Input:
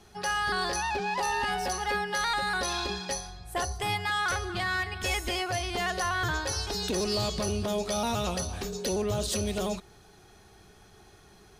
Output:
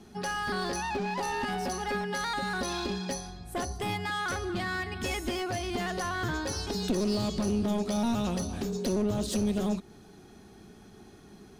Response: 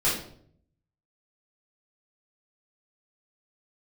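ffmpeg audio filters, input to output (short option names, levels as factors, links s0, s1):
-filter_complex "[0:a]equalizer=f=240:t=o:w=1.2:g=15,asplit=2[s0][s1];[s1]acompressor=threshold=0.0316:ratio=6,volume=0.891[s2];[s0][s2]amix=inputs=2:normalize=0,aeval=exprs='clip(val(0),-1,0.0944)':c=same,volume=0.422"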